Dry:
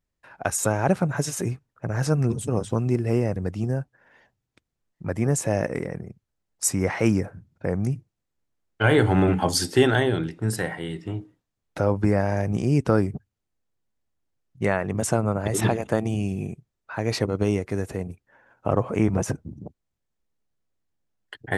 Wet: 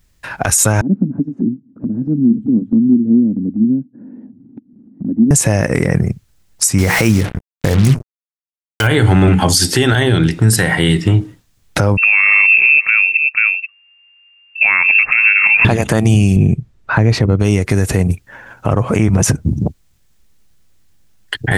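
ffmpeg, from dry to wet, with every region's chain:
-filter_complex "[0:a]asettb=1/sr,asplit=3[a][b][c];[a]atrim=end=0.814[d];[b]atrim=start=0.81:end=5.31,asetpts=PTS-STARTPTS,afade=t=in:d=0.004:c=qsin,afade=t=out:st=4.496:d=0.004:c=qsin,asuperpass=centerf=250:order=4:qfactor=3.2,acompressor=mode=upward:threshold=-36dB:ratio=2.5:attack=3.2:release=140:knee=2.83:detection=peak[e];[c]atrim=start=5.306[f];[d][e]acrossfade=d=0.004:c1=hsin:c2=qsin[g];[g][f]acrossfade=d=0.004:c1=qsin:c2=hsin,asettb=1/sr,asplit=3[h][i][j];[h]atrim=end=6.784[k];[i]atrim=start=6.78:end=8.87,asetpts=PTS-STARTPTS,afade=t=in:d=0.004:c=qsin,afade=t=out:st=2.086:d=0.004:c=qsin,bandreject=f=60:t=h:w=6,bandreject=f=120:t=h:w=6,bandreject=f=180:t=h:w=6,bandreject=f=240:t=h:w=6,bandreject=f=300:t=h:w=6,bandreject=f=360:t=h:w=6,bandreject=f=420:t=h:w=6,bandreject=f=480:t=h:w=6,acrusher=bits=5:mix=0:aa=0.5[l];[j]atrim=start=8.866[m];[k][l]acrossfade=d=0.004:c1=hsin:c2=qsin[n];[n][m]acrossfade=d=0.004:c1=qsin:c2=hsin,asettb=1/sr,asplit=3[o][p][q];[o]atrim=end=11.974[r];[p]atrim=start=11.97:end=15.65,asetpts=PTS-STARTPTS,afade=t=in:d=0.004:c=qsin,afade=t=out:st=3.676:d=0.004:c=qsin,aecho=1:1:483:0.15,atrim=end_sample=162288,lowpass=f=2.4k:t=q:w=0.5098,lowpass=f=2.4k:t=q:w=0.6013,lowpass=f=2.4k:t=q:w=0.9,lowpass=f=2.4k:t=q:w=2.563,afreqshift=-2800[s];[q]atrim=start=15.646[t];[r][s]acrossfade=d=0.004:c1=hsin:c2=qsin[u];[u][t]acrossfade=d=0.004:c1=qsin:c2=hsin,asettb=1/sr,asplit=3[v][w][x];[v]atrim=end=16.364[y];[w]atrim=start=16.36:end=17.4,asetpts=PTS-STARTPTS,afade=t=in:d=0.004:c=qsin,afade=t=out:st=1.036:d=0.004:c=qsin,lowpass=f=2k:p=1,lowshelf=f=450:g=6[z];[x]atrim=start=17.396[aa];[y][z]acrossfade=d=0.004:c1=hsin:c2=qsin[ab];[ab][aa]acrossfade=d=0.004:c1=qsin:c2=hsin,equalizer=f=560:w=0.4:g=-9.5,acompressor=threshold=-33dB:ratio=6,alimiter=level_in=27.5dB:limit=-1dB:release=50:level=0:latency=1,volume=-1dB"

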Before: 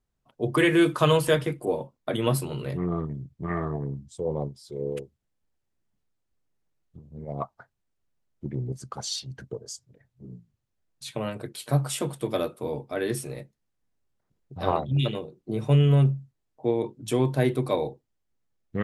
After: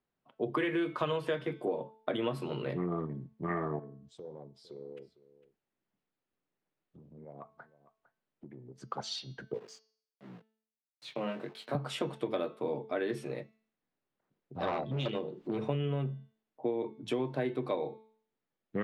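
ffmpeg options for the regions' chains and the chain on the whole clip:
-filter_complex "[0:a]asettb=1/sr,asplit=3[a][b][c];[a]atrim=end=3.794[d];[b]atrim=start=3.79:end=8.78,asetpts=PTS-STARTPTS,afade=t=in:d=0.004:c=qsin,afade=t=out:st=4.986:d=0.004:c=qsin,acompressor=threshold=-44dB:ratio=4:attack=3.2:release=140:knee=1:detection=peak,aecho=1:1:455:0.133,atrim=end_sample=220059[e];[c]atrim=start=8.776[f];[d][e]acrossfade=d=0.004:c1=hsin:c2=qsin[g];[g][f]acrossfade=d=0.004:c1=qsin:c2=hsin,asettb=1/sr,asplit=3[h][i][j];[h]atrim=end=9.544[k];[i]atrim=start=9.54:end=11.75,asetpts=PTS-STARTPTS,afade=t=in:d=0.004:c=qsin,afade=t=out:st=2.206:d=0.004:c=qsin,aeval=exprs='val(0)*gte(abs(val(0)),0.00531)':c=same,flanger=delay=16:depth=8:speed=1.4,highpass=f=130:w=0.5412,highpass=f=130:w=1.3066[l];[j]atrim=start=11.746[m];[k][l]acrossfade=d=0.004:c1=hsin:c2=qsin[n];[n][m]acrossfade=d=0.004:c1=qsin:c2=hsin,asettb=1/sr,asplit=3[o][p][q];[o]atrim=end=14.554[r];[p]atrim=start=14.55:end=15.64,asetpts=PTS-STARTPTS,afade=t=in:d=0.004:c=qsin,afade=t=out:st=1.086:d=0.004:c=qsin,acompressor=mode=upward:threshold=-29dB:ratio=2.5:attack=3.2:release=140:knee=2.83:detection=peak,asoftclip=type=hard:threshold=-23dB[s];[q]atrim=start=15.636[t];[r][s]acrossfade=d=0.004:c1=hsin:c2=qsin[u];[u][t]acrossfade=d=0.004:c1=qsin:c2=hsin,acrossover=split=160 4100:gain=0.112 1 0.0891[v][w][x];[v][w][x]amix=inputs=3:normalize=0,bandreject=f=219.8:t=h:w=4,bandreject=f=439.6:t=h:w=4,bandreject=f=659.4:t=h:w=4,bandreject=f=879.2:t=h:w=4,bandreject=f=1.099k:t=h:w=4,bandreject=f=1.3188k:t=h:w=4,bandreject=f=1.5386k:t=h:w=4,bandreject=f=1.7584k:t=h:w=4,bandreject=f=1.9782k:t=h:w=4,bandreject=f=2.198k:t=h:w=4,bandreject=f=2.4178k:t=h:w=4,bandreject=f=2.6376k:t=h:w=4,bandreject=f=2.8574k:t=h:w=4,bandreject=f=3.0772k:t=h:w=4,bandreject=f=3.297k:t=h:w=4,bandreject=f=3.5168k:t=h:w=4,bandreject=f=3.7366k:t=h:w=4,bandreject=f=3.9564k:t=h:w=4,bandreject=f=4.1762k:t=h:w=4,bandreject=f=4.396k:t=h:w=4,bandreject=f=4.6158k:t=h:w=4,bandreject=f=4.8356k:t=h:w=4,bandreject=f=5.0554k:t=h:w=4,bandreject=f=5.2752k:t=h:w=4,bandreject=f=5.495k:t=h:w=4,bandreject=f=5.7148k:t=h:w=4,bandreject=f=5.9346k:t=h:w=4,bandreject=f=6.1544k:t=h:w=4,bandreject=f=6.3742k:t=h:w=4,bandreject=f=6.594k:t=h:w=4,acompressor=threshold=-29dB:ratio=6"

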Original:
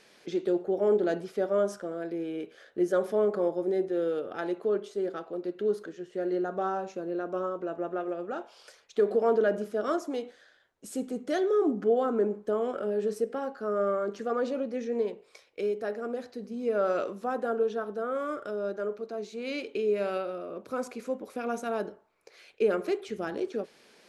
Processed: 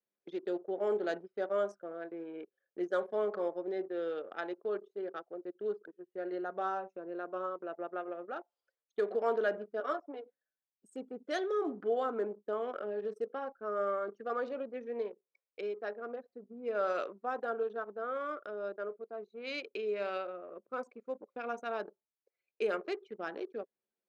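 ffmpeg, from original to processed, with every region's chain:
-filter_complex "[0:a]asettb=1/sr,asplit=3[a][b][c];[a]atrim=end=9.804[d];[b]atrim=start=9.8:end=10.25,asetpts=PTS-STARTPTS,afade=t=in:d=0.004:c=qsin,afade=t=out:st=0.446:d=0.004:c=qsin,highpass=f=390:p=1,highshelf=f=3.1k:g=-12,aecho=1:1:6.9:0.63,atrim=end_sample=19845[e];[c]atrim=start=10.246[f];[d][e]acrossfade=d=0.004:c1=hsin:c2=qsin[g];[g][f]acrossfade=d=0.004:c1=qsin:c2=hsin,anlmdn=2.51,highpass=f=960:p=1,equalizer=f=3.9k:w=4.6:g=2"

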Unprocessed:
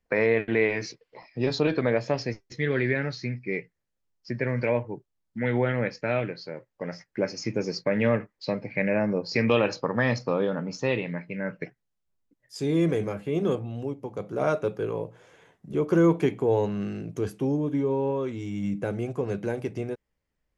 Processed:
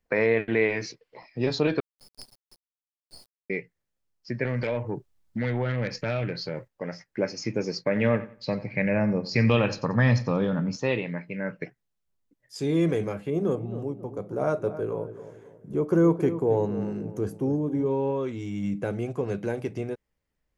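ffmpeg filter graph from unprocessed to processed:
-filter_complex "[0:a]asettb=1/sr,asplit=3[a][b][c];[a]atrim=end=1.804[d];[b]atrim=start=1.8:end=3.5,asetpts=PTS-STARTPTS,afade=t=in:d=0.004:c=qsin,afade=t=out:st=1.696:d=0.004:c=qsin,asuperpass=centerf=4800:order=12:qfactor=5,acrusher=bits=6:dc=4:mix=0:aa=0.000001[e];[c]atrim=start=3.496[f];[d][e]acrossfade=d=0.004:c1=hsin:c2=qsin[g];[g][f]acrossfade=d=0.004:c1=qsin:c2=hsin,asettb=1/sr,asplit=3[h][i][j];[h]atrim=end=4.454[k];[i]atrim=start=4.45:end=6.68,asetpts=PTS-STARTPTS,afade=t=in:d=0.004:c=qsin,afade=t=out:st=2.226:d=0.004:c=qsin,asubboost=boost=3.5:cutoff=170,acompressor=threshold=-34dB:ratio=2.5:attack=3.2:release=140:knee=1:detection=peak,aeval=exprs='0.0891*sin(PI/2*1.58*val(0)/0.0891)':c=same[l];[j]atrim=start=6.676[m];[k][l]acrossfade=d=0.004:c1=hsin:c2=qsin[n];[n][m]acrossfade=d=0.004:c1=qsin:c2=hsin,asettb=1/sr,asplit=3[o][p][q];[o]atrim=end=7.864[r];[p]atrim=start=7.86:end=10.76,asetpts=PTS-STARTPTS,afade=t=in:d=0.004:c=qsin,afade=t=out:st=2.896:d=0.004:c=qsin,aecho=1:1:90|180|270:0.158|0.0428|0.0116,atrim=end_sample=127890,asubboost=boost=6:cutoff=180[s];[q]atrim=start=10.756[t];[r][s]acrossfade=d=0.004:c1=hsin:c2=qsin[u];[u][t]acrossfade=d=0.004:c1=qsin:c2=hsin,asettb=1/sr,asplit=3[v][w][x];[v]atrim=end=13.304[y];[w]atrim=start=13.3:end=17.86,asetpts=PTS-STARTPTS,afade=t=in:d=0.004:c=qsin,afade=t=out:st=4.556:d=0.004:c=qsin,equalizer=f=3.1k:t=o:w=1.7:g=-11,asplit=2[z][aa];[aa]adelay=269,lowpass=f=1.2k:p=1,volume=-12dB,asplit=2[ab][ac];[ac]adelay=269,lowpass=f=1.2k:p=1,volume=0.43,asplit=2[ad][ae];[ae]adelay=269,lowpass=f=1.2k:p=1,volume=0.43,asplit=2[af][ag];[ag]adelay=269,lowpass=f=1.2k:p=1,volume=0.43[ah];[z][ab][ad][af][ah]amix=inputs=5:normalize=0,atrim=end_sample=201096[ai];[x]atrim=start=17.856[aj];[y][ai]acrossfade=d=0.004:c1=hsin:c2=qsin[ak];[ak][aj]acrossfade=d=0.004:c1=qsin:c2=hsin"

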